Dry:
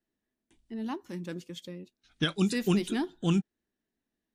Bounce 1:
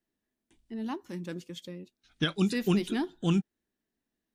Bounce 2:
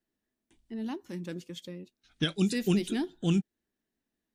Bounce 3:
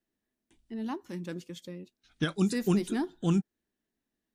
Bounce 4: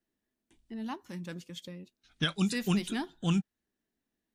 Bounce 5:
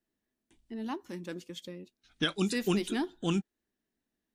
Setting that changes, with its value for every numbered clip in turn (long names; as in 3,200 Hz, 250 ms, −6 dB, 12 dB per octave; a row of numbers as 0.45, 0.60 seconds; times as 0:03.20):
dynamic equaliser, frequency: 8,000, 1,100, 3,000, 360, 140 Hertz